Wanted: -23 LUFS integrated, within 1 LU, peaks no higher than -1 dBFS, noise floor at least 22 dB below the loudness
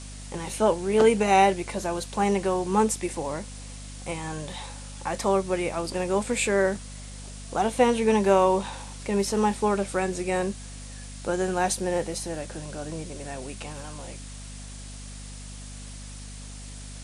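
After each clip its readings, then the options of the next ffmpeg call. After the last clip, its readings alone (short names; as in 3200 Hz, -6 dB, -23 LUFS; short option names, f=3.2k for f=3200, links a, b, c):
hum 50 Hz; harmonics up to 250 Hz; hum level -39 dBFS; noise floor -40 dBFS; noise floor target -48 dBFS; loudness -26.0 LUFS; peak -7.0 dBFS; loudness target -23.0 LUFS
-> -af "bandreject=f=50:t=h:w=6,bandreject=f=100:t=h:w=6,bandreject=f=150:t=h:w=6,bandreject=f=200:t=h:w=6,bandreject=f=250:t=h:w=6"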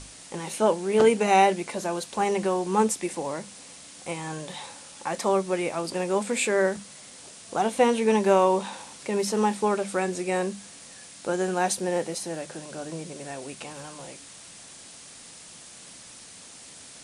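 hum none; noise floor -46 dBFS; noise floor target -48 dBFS
-> -af "afftdn=nr=6:nf=-46"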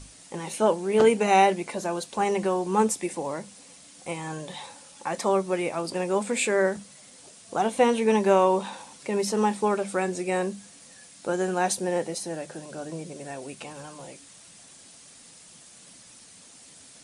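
noise floor -51 dBFS; loudness -25.5 LUFS; peak -7.0 dBFS; loudness target -23.0 LUFS
-> -af "volume=2.5dB"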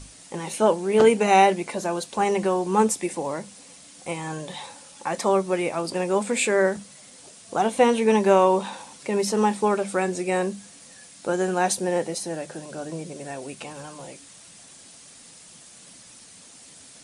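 loudness -23.0 LUFS; peak -4.5 dBFS; noise floor -48 dBFS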